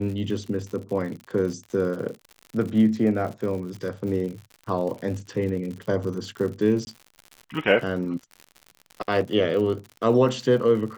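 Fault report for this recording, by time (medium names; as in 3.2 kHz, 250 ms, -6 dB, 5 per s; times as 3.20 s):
crackle 86 per s -33 dBFS
6.85–6.87 s: dropout 20 ms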